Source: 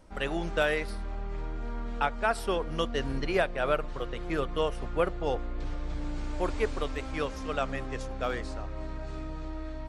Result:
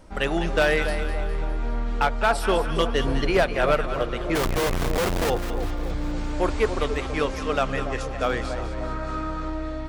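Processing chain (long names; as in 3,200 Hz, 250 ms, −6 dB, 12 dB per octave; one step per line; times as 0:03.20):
0:04.35–0:05.30: comparator with hysteresis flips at −43.5 dBFS
0:08.83–0:09.50: parametric band 1,300 Hz +11.5 dB 0.56 octaves
on a send: echo with a time of its own for lows and highs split 1,000 Hz, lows 283 ms, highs 204 ms, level −9.5 dB
on the sum: gain into a clipping stage and back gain 20 dB
level +7 dB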